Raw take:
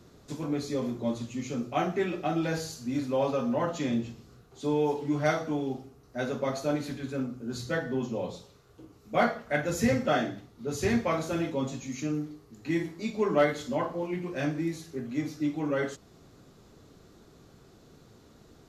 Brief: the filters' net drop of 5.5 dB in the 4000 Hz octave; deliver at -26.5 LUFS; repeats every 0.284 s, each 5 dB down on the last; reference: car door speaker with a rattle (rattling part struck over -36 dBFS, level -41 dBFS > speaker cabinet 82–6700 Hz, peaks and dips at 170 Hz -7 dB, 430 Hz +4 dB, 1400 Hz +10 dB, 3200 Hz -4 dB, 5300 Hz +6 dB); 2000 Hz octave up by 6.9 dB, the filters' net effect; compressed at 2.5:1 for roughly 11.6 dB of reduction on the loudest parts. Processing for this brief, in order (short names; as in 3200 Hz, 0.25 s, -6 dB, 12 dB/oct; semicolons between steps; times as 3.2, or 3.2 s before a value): bell 2000 Hz +4.5 dB; bell 4000 Hz -8.5 dB; compressor 2.5:1, threshold -37 dBFS; feedback echo 0.284 s, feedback 56%, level -5 dB; rattling part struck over -36 dBFS, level -41 dBFS; speaker cabinet 82–6700 Hz, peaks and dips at 170 Hz -7 dB, 430 Hz +4 dB, 1400 Hz +10 dB, 3200 Hz -4 dB, 5300 Hz +6 dB; gain +9.5 dB